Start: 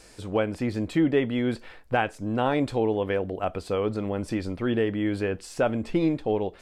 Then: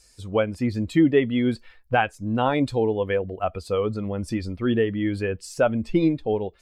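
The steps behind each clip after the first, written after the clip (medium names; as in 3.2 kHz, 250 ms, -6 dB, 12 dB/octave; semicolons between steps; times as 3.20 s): expander on every frequency bin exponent 1.5; trim +5.5 dB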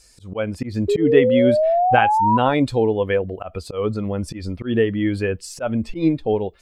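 painted sound rise, 0.88–2.38 s, 400–1000 Hz -21 dBFS; slow attack 139 ms; trim +4 dB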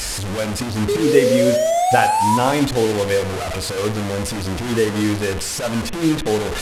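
one-bit delta coder 64 kbps, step -19 dBFS; reverberation RT60 0.75 s, pre-delay 38 ms, DRR 10 dB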